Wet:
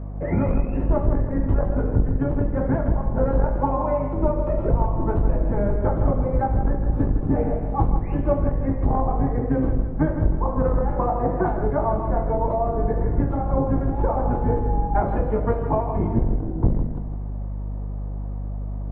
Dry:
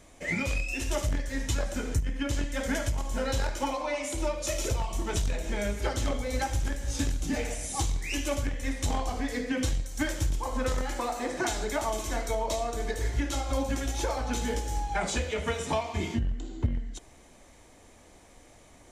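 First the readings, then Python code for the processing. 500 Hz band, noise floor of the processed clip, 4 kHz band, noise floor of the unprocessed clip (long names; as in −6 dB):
+9.0 dB, −29 dBFS, below −25 dB, −55 dBFS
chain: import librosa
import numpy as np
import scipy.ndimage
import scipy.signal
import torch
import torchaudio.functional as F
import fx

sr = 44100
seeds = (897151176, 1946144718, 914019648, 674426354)

y = fx.octave_divider(x, sr, octaves=1, level_db=2.0)
y = scipy.signal.sosfilt(scipy.signal.butter(4, 1100.0, 'lowpass', fs=sr, output='sos'), y)
y = fx.low_shelf(y, sr, hz=180.0, db=-5.5)
y = fx.rider(y, sr, range_db=10, speed_s=0.5)
y = fx.wow_flutter(y, sr, seeds[0], rate_hz=2.1, depth_cents=20.0)
y = fx.add_hum(y, sr, base_hz=50, snr_db=11)
y = fx.doubler(y, sr, ms=19.0, db=-11)
y = fx.echo_feedback(y, sr, ms=159, feedback_pct=39, wet_db=-9.0)
y = F.gain(torch.from_numpy(y), 8.5).numpy()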